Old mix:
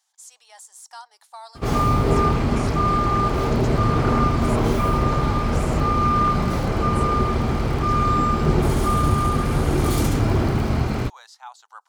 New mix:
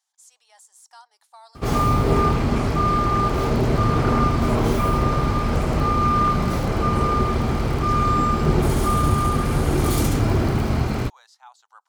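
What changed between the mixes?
speech −7.0 dB
background: add high-shelf EQ 8,200 Hz +4 dB

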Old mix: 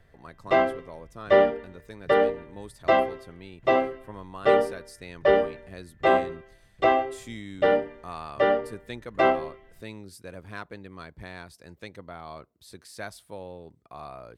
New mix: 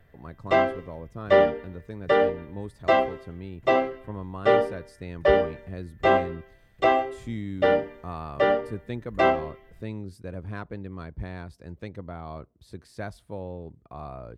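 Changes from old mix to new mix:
speech: add spectral tilt −3 dB per octave
background: remove high-frequency loss of the air 59 metres

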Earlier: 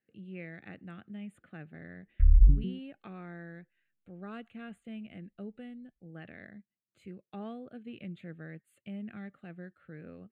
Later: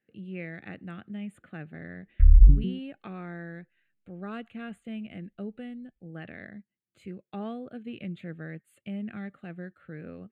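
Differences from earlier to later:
speech +5.5 dB
background +5.0 dB

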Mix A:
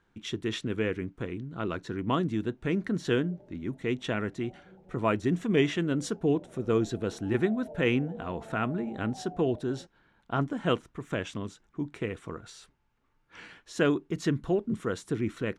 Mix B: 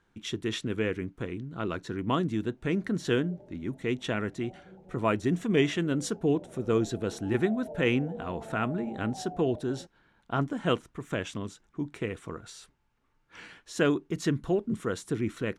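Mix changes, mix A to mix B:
background +3.0 dB
master: add high-shelf EQ 7,800 Hz +7 dB

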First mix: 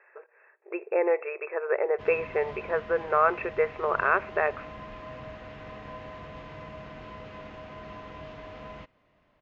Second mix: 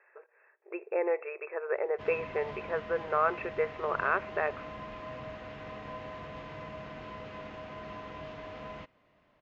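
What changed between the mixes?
speech −5.0 dB
background: add low-shelf EQ 66 Hz −7.5 dB

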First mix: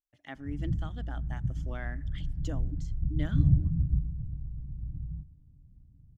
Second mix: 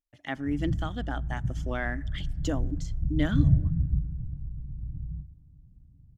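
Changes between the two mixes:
speech +9.5 dB
background: send +11.0 dB

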